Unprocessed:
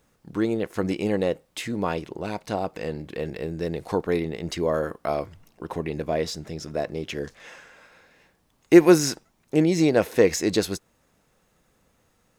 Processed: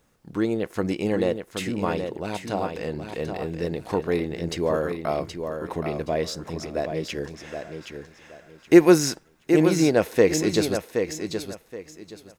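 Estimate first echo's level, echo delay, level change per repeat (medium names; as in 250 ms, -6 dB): -7.0 dB, 773 ms, -12.5 dB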